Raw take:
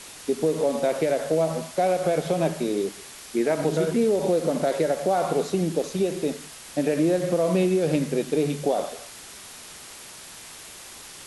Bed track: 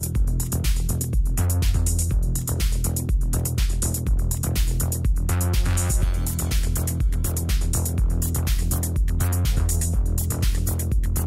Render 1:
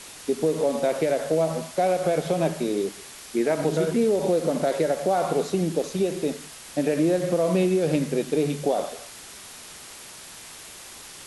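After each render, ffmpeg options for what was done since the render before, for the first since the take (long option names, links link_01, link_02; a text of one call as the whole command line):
ffmpeg -i in.wav -af anull out.wav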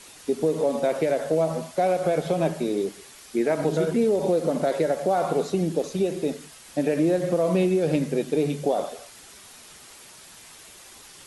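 ffmpeg -i in.wav -af "afftdn=noise_reduction=6:noise_floor=-43" out.wav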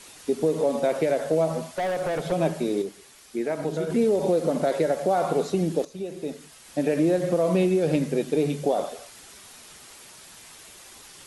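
ffmpeg -i in.wav -filter_complex "[0:a]asettb=1/sr,asplit=3[link_01][link_02][link_03];[link_01]atrim=end=1.594[link_04];[link_02]atrim=start=1.59:end=2.32,asetpts=PTS-STARTPTS,afade=type=in:duration=0.004:curve=qsin,afade=type=out:start_time=0.726:duration=0.004:curve=qsin,volume=23.5dB,asoftclip=hard,volume=-23.5dB[link_05];[link_03]atrim=start=2.316[link_06];[link_04][link_05]acrossfade=duration=0.004:curve1=hsin:curve2=qsin[link_07];[link_07][link_06]acrossfade=duration=0.004:curve1=qsin:curve2=hsin,asplit=4[link_08][link_09][link_10][link_11];[link_08]atrim=end=2.822[link_12];[link_09]atrim=start=2.818:end=3.902,asetpts=PTS-STARTPTS,volume=-4.5dB[link_13];[link_10]atrim=start=3.898:end=5.85,asetpts=PTS-STARTPTS,afade=type=out:start_time=1.948:duration=0.004:curve=hsin:silence=0.223872[link_14];[link_11]atrim=start=5.85,asetpts=PTS-STARTPTS,afade=type=in:duration=1.06:silence=0.223872[link_15];[link_12][link_13]acrossfade=duration=0.004:curve1=hsin:curve2=hsin[link_16];[link_14][link_15]concat=n=2:v=0:a=1[link_17];[link_16][link_17]acrossfade=duration=0.004:curve1=hsin:curve2=hsin" out.wav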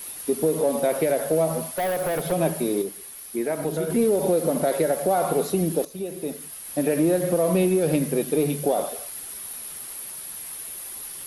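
ffmpeg -i in.wav -filter_complex "[0:a]aexciter=amount=12.1:drive=2.4:freq=10000,asplit=2[link_01][link_02];[link_02]asoftclip=type=tanh:threshold=-25dB,volume=-12dB[link_03];[link_01][link_03]amix=inputs=2:normalize=0" out.wav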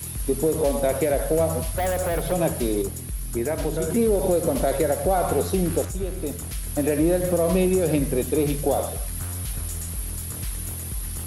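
ffmpeg -i in.wav -i bed.wav -filter_complex "[1:a]volume=-10dB[link_01];[0:a][link_01]amix=inputs=2:normalize=0" out.wav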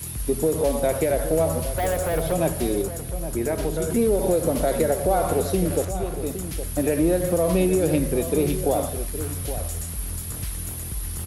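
ffmpeg -i in.wav -filter_complex "[0:a]asplit=2[link_01][link_02];[link_02]adelay=816.3,volume=-11dB,highshelf=frequency=4000:gain=-18.4[link_03];[link_01][link_03]amix=inputs=2:normalize=0" out.wav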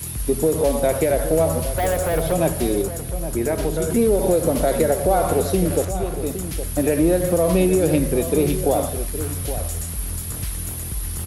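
ffmpeg -i in.wav -af "volume=3dB" out.wav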